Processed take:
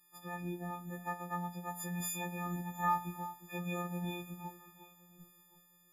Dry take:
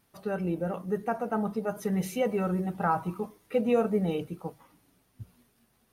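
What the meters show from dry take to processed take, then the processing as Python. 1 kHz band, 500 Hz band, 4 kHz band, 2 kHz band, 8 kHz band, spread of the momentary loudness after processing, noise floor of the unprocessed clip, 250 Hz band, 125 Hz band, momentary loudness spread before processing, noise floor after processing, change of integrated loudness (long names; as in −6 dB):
−4.5 dB, −18.5 dB, −2.0 dB, −3.5 dB, +3.5 dB, 22 LU, −69 dBFS, −11.5 dB, −7.0 dB, 10 LU, −67 dBFS, −9.5 dB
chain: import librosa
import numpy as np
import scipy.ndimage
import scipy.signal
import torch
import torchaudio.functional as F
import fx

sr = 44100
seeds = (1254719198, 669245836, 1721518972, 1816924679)

y = fx.freq_snap(x, sr, grid_st=6)
y = fx.robotise(y, sr, hz=176.0)
y = fx.echo_alternate(y, sr, ms=357, hz=1300.0, feedback_pct=52, wet_db=-13)
y = y * 10.0 ** (-8.0 / 20.0)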